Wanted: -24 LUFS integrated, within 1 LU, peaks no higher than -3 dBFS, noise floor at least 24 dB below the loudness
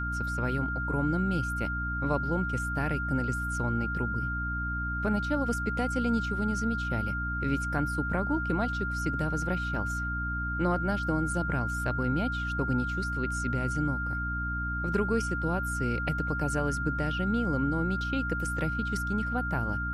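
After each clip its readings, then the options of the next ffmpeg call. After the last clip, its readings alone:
hum 60 Hz; harmonics up to 300 Hz; hum level -32 dBFS; steady tone 1400 Hz; tone level -32 dBFS; loudness -30.0 LUFS; peak -14.0 dBFS; loudness target -24.0 LUFS
-> -af "bandreject=f=60:t=h:w=4,bandreject=f=120:t=h:w=4,bandreject=f=180:t=h:w=4,bandreject=f=240:t=h:w=4,bandreject=f=300:t=h:w=4"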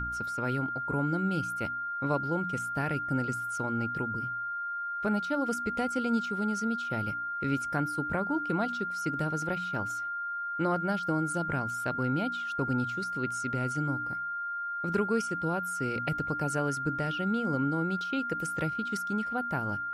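hum none; steady tone 1400 Hz; tone level -32 dBFS
-> -af "bandreject=f=1.4k:w=30"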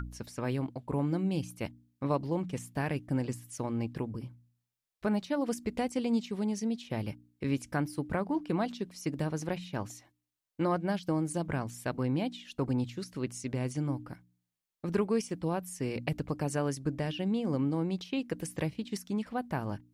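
steady tone none; loudness -34.0 LUFS; peak -15.5 dBFS; loudness target -24.0 LUFS
-> -af "volume=10dB"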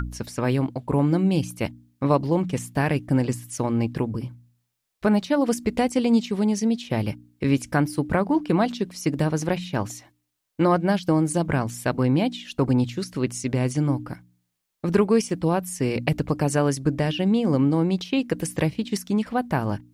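loudness -24.0 LUFS; peak -5.5 dBFS; noise floor -77 dBFS

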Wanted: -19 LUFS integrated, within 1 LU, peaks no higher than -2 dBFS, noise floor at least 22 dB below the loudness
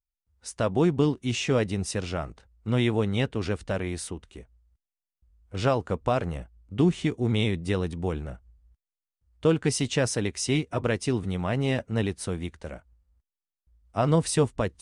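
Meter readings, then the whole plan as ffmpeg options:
loudness -27.0 LUFS; peak -11.0 dBFS; loudness target -19.0 LUFS
-> -af "volume=8dB"

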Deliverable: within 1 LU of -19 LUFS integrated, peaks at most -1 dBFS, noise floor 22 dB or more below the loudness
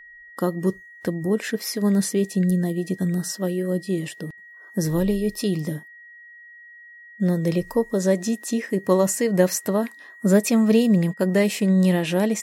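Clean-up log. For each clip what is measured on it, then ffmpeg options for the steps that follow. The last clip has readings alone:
steady tone 1900 Hz; tone level -43 dBFS; loudness -22.5 LUFS; peak -5.5 dBFS; loudness target -19.0 LUFS
-> -af "bandreject=f=1.9k:w=30"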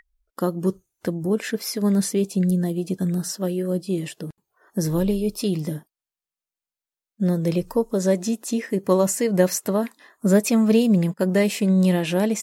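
steady tone none; loudness -22.5 LUFS; peak -5.5 dBFS; loudness target -19.0 LUFS
-> -af "volume=3.5dB"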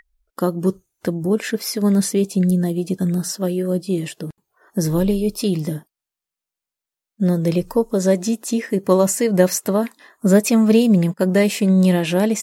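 loudness -19.0 LUFS; peak -2.0 dBFS; noise floor -87 dBFS

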